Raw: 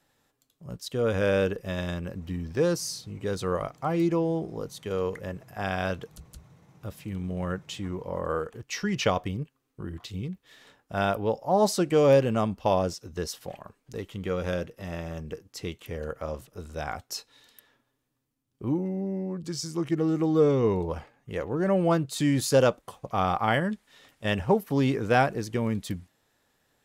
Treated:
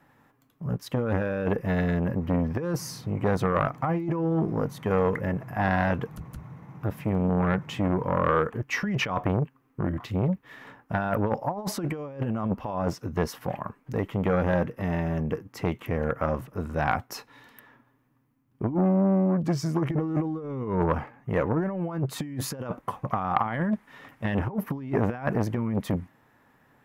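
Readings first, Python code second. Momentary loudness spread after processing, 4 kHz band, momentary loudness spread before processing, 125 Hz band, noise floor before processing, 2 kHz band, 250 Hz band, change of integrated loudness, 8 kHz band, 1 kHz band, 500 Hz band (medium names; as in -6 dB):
9 LU, -5.0 dB, 16 LU, +3.5 dB, -75 dBFS, +1.0 dB, +2.0 dB, 0.0 dB, -5.0 dB, +1.0 dB, -2.5 dB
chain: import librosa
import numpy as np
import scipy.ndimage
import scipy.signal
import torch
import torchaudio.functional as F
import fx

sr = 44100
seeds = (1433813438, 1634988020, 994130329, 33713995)

y = fx.graphic_eq(x, sr, hz=(125, 250, 1000, 2000, 4000, 8000), db=(8, 8, 9, 6, -8, -9))
y = fx.over_compress(y, sr, threshold_db=-22.0, ratio=-0.5)
y = fx.transformer_sat(y, sr, knee_hz=1000.0)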